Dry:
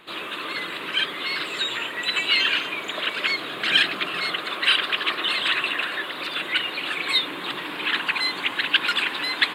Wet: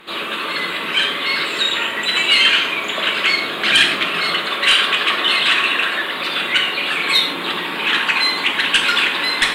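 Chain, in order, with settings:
sine wavefolder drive 6 dB, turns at −4.5 dBFS
reverb whose tail is shaped and stops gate 180 ms falling, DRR 1.5 dB
level −4 dB

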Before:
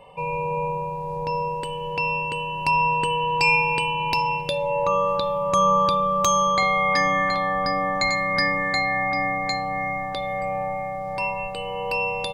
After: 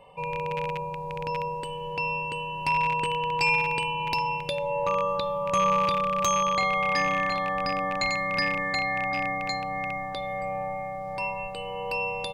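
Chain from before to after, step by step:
loose part that buzzes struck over −31 dBFS, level −19 dBFS
level −4.5 dB

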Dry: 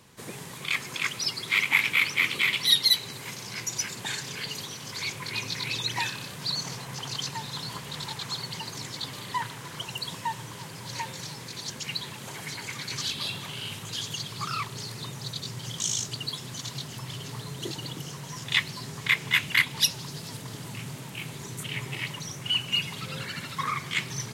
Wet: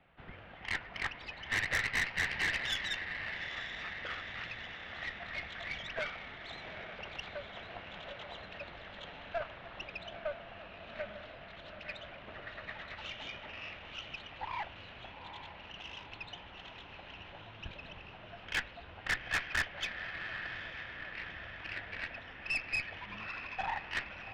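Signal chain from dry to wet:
single-sideband voice off tune −320 Hz 300–3,200 Hz
feedback delay with all-pass diffusion 847 ms, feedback 63%, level −9.5 dB
tube saturation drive 23 dB, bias 0.65
level −3 dB

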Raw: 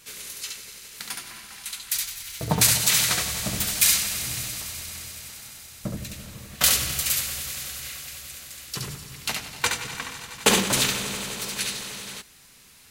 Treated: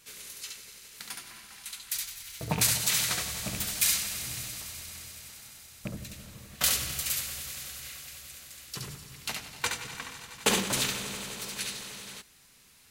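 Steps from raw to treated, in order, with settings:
loose part that buzzes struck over −23 dBFS, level −18 dBFS
level −6.5 dB

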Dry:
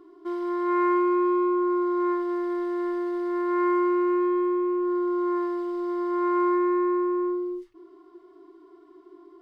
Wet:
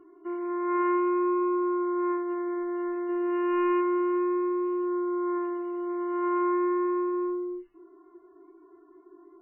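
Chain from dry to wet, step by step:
0:03.09–0:03.81: leveller curve on the samples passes 1
0:04.34–0:05.89: dynamic equaliser 100 Hz, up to −3 dB, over −51 dBFS, Q 1.4
level −2.5 dB
MP3 8 kbit/s 11,025 Hz

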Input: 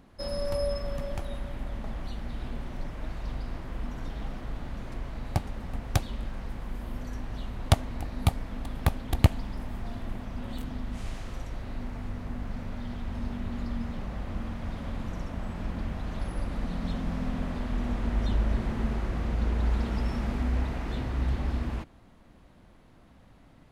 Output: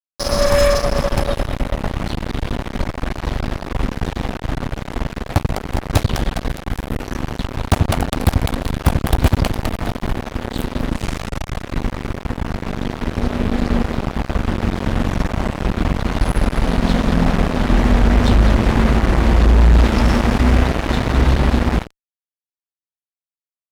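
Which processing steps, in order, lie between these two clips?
echo with a time of its own for lows and highs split 350 Hz, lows 87 ms, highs 205 ms, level −9 dB
fuzz pedal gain 27 dB, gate −33 dBFS
level +6.5 dB

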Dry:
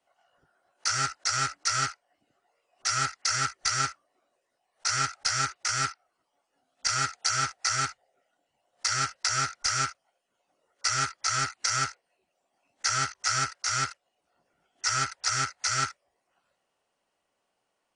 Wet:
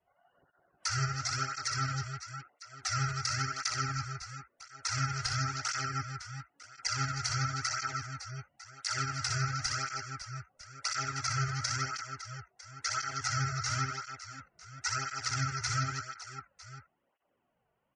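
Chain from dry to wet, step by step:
adaptive Wiener filter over 9 samples
low-shelf EQ 110 Hz +11.5 dB
reverse bouncing-ball delay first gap 60 ms, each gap 1.6×, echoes 5
downward compressor, threshold −27 dBFS, peak gain reduction 6.5 dB
gate on every frequency bin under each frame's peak −25 dB strong
low-shelf EQ 230 Hz +6 dB
through-zero flanger with one copy inverted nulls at 0.96 Hz, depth 3.9 ms

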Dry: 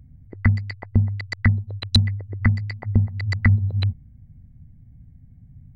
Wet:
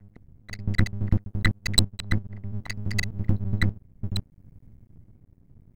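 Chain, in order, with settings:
slices reordered back to front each 84 ms, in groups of 5
parametric band 1,400 Hz −6.5 dB 2.7 octaves
rotating-speaker cabinet horn 0.6 Hz
drawn EQ curve 240 Hz 0 dB, 370 Hz −15 dB, 1,300 Hz +11 dB
half-wave rectification

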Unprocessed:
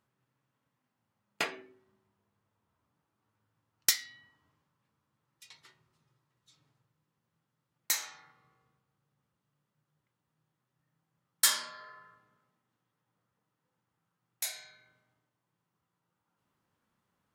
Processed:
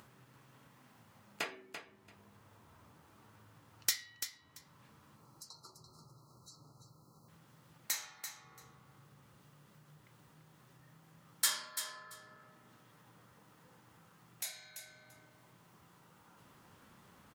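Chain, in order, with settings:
time-frequency box erased 0:05.16–0:07.28, 1,400–3,900 Hz
upward compression, threshold −36 dBFS
on a send: repeating echo 339 ms, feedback 16%, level −9 dB
on the sum: level −6 dB

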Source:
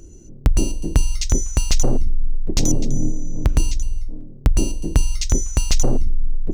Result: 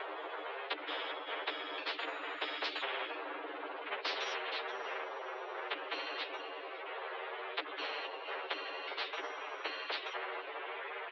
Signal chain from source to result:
lower of the sound and its delayed copy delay 4.9 ms
source passing by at 0:02.04, 33 m/s, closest 1.9 metres
in parallel at −2 dB: upward compression, threshold −26 dBFS
on the sum: bucket-brigade delay 236 ms, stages 4,096, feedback 46%, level −22.5 dB
soft clipping −17 dBFS, distortion −8 dB
bit reduction 11 bits
phase-vocoder stretch with locked phases 1.7×
single-sideband voice off tune +250 Hz 170–3,500 Hz
high-frequency loss of the air 490 metres
double-tracking delay 13 ms −3 dB
every bin compressed towards the loudest bin 10 to 1
level +3 dB

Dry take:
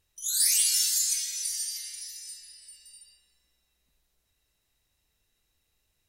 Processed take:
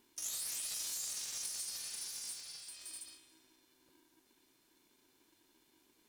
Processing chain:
brickwall limiter −19 dBFS, peak gain reduction 7.5 dB
downward compressor 4 to 1, threshold −45 dBFS, peak gain reduction 16 dB
0:02.41–0:02.81: resonant band-pass 4,000 Hz, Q 0.62
ring modulator with a square carrier 320 Hz
level +3.5 dB

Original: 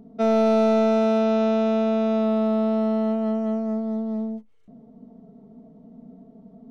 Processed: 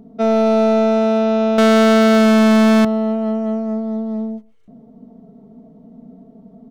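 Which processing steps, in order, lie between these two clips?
0:01.58–0:02.85: leveller curve on the samples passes 5
far-end echo of a speakerphone 130 ms, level −24 dB
level +4.5 dB

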